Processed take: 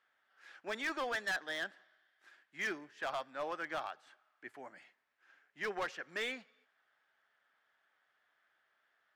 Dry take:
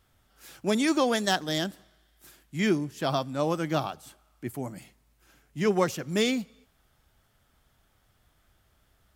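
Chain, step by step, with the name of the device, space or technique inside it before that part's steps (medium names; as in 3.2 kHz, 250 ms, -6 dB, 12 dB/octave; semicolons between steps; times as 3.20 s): megaphone (band-pass 580–3500 Hz; peaking EQ 1.7 kHz +10.5 dB 0.58 oct; hard clipper -23.5 dBFS, distortion -10 dB); trim -8.5 dB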